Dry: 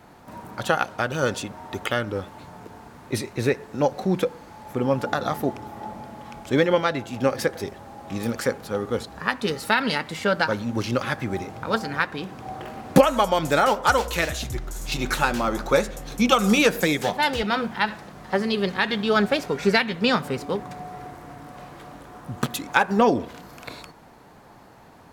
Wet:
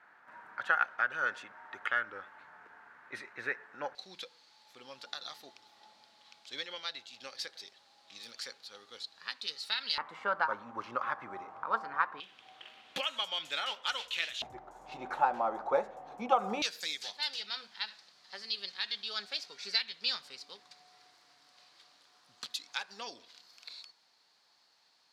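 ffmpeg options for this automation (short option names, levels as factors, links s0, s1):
-af "asetnsamples=n=441:p=0,asendcmd='3.95 bandpass f 4200;9.98 bandpass f 1100;12.2 bandpass f 3200;14.42 bandpass f 800;16.62 bandpass f 4500',bandpass=f=1600:t=q:w=3.5:csg=0"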